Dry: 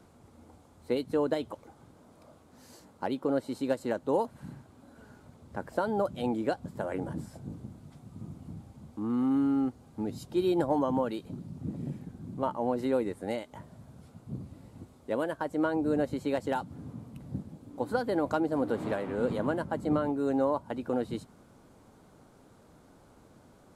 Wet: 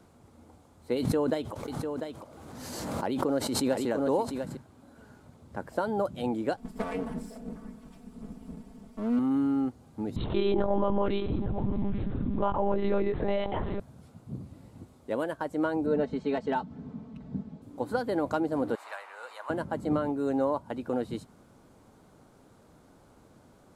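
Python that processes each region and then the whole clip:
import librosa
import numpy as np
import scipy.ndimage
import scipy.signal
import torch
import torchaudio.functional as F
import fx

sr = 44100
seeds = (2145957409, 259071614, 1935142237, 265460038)

y = fx.chain(x, sr, fx.echo_single(ms=697, db=-7.0),
    fx.pre_swell(db_per_s=28.0), at=(0.98, 4.57))
y = fx.chain(y, sr, fx.lower_of_two(delay_ms=4.2),
    fx.comb(ms=4.6, depth=0.72),
    fx.echo_stepped(ms=253, hz=190.0, octaves=1.4, feedback_pct=70, wet_db=-12.0), at=(6.57, 9.19))
y = fx.chain(y, sr, fx.echo_single(ms=856, db=-22.0),
    fx.lpc_monotone(seeds[0], pitch_hz=200.0, order=10),
    fx.env_flatten(amount_pct=70), at=(10.16, 13.8))
y = fx.chain(y, sr, fx.air_absorb(metres=140.0),
    fx.comb(ms=4.6, depth=0.75), at=(15.86, 17.62))
y = fx.chain(y, sr, fx.highpass(hz=850.0, slope=24),
    fx.notch(hz=3300.0, q=11.0), at=(18.75, 19.5))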